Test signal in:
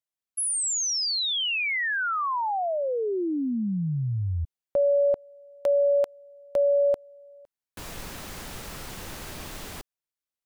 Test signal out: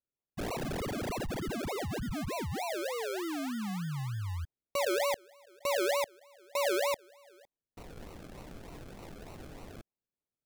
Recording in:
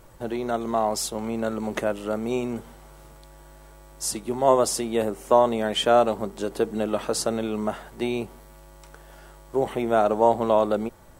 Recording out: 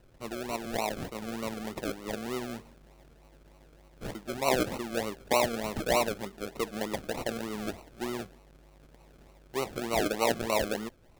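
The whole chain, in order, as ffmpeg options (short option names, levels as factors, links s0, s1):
-af "acrusher=samples=37:mix=1:aa=0.000001:lfo=1:lforange=22.2:lforate=3.3,volume=0.376"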